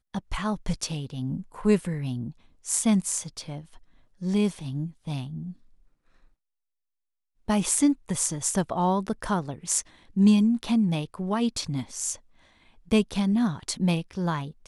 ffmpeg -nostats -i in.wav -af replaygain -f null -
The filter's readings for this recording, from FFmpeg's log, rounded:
track_gain = +6.4 dB
track_peak = 0.316